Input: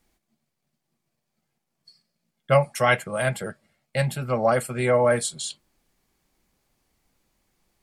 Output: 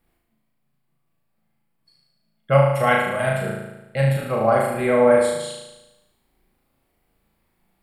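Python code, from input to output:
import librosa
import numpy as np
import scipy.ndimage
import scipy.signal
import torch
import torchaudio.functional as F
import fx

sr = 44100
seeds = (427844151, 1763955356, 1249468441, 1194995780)

y = fx.peak_eq(x, sr, hz=6200.0, db=-13.0, octaves=1.2)
y = fx.notch(y, sr, hz=6200.0, q=9.7)
y = fx.room_flutter(y, sr, wall_m=6.3, rt60_s=1.0)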